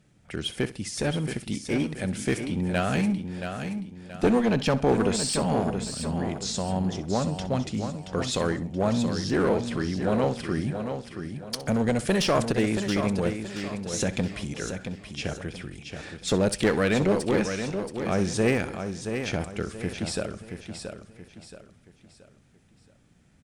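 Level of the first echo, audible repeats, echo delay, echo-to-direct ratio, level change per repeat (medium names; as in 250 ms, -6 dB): -16.0 dB, 8, 64 ms, -6.0 dB, no regular repeats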